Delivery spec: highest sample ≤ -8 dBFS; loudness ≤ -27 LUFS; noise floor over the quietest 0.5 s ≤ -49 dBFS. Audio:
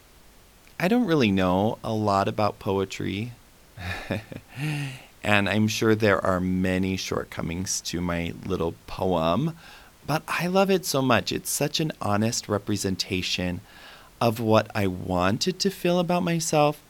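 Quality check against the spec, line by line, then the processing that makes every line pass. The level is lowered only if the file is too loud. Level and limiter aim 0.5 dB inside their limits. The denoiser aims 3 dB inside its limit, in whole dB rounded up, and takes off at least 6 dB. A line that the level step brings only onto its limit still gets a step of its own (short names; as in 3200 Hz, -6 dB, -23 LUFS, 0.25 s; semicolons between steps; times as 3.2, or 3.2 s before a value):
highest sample -2.5 dBFS: fail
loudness -25.0 LUFS: fail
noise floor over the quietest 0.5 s -53 dBFS: OK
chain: gain -2.5 dB; limiter -8.5 dBFS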